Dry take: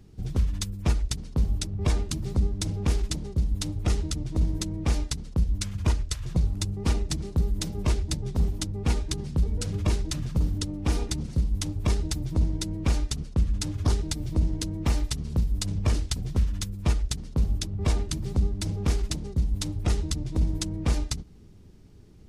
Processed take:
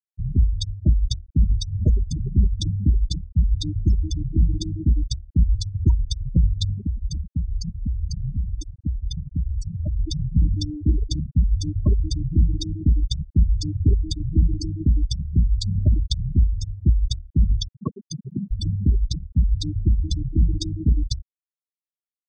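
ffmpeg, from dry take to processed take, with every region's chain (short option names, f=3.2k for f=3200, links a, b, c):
-filter_complex "[0:a]asettb=1/sr,asplit=3[a][b][c];[a]atrim=end=6.824[d];[b]atrim=start=6.82:end=9.96,asetpts=PTS-STARTPTS,afade=t=in:d=0.004:c=qsin,afade=t=out:st=3.136:d=0.004:c=qsin,bandreject=f=50:t=h:w=6,bandreject=f=100:t=h:w=6,bandreject=f=150:t=h:w=6,bandreject=f=200:t=h:w=6,bandreject=f=250:t=h:w=6,bandreject=f=300:t=h:w=6,bandreject=f=350:t=h:w=6,bandreject=f=400:t=h:w=6,bandreject=f=450:t=h:w=6,acompressor=threshold=-25dB:ratio=6:attack=3.2:release=140:knee=1:detection=peak[e];[c]atrim=start=9.956[f];[d][e]acrossfade=d=0.004:c1=hsin:c2=qsin[g];[g][f]acrossfade=d=0.004:c1=qsin:c2=hsin,asettb=1/sr,asplit=3[h][i][j];[h]atrim=end=17.684[k];[i]atrim=start=17.68:end=18.51,asetpts=PTS-STARTPTS,afade=t=in:d=0.004:c=qsin,afade=t=out:st=0.826:d=0.004:c=qsin,highpass=f=140:w=0.5412,highpass=f=140:w=1.3066,equalizer=f=1k:w=4.7:g=3.5[l];[j]atrim=start=18.506[m];[k][l]acrossfade=d=0.004:c1=hsin:c2=qsin[n];[n][m]acrossfade=d=0.004:c1=qsin:c2=hsin,aemphasis=mode=production:type=75kf,afftfilt=real='re*gte(hypot(re,im),0.158)':imag='im*gte(hypot(re,im),0.158)':win_size=1024:overlap=0.75,lowpass=f=4.2k:w=0.5412,lowpass=f=4.2k:w=1.3066,volume=6.5dB"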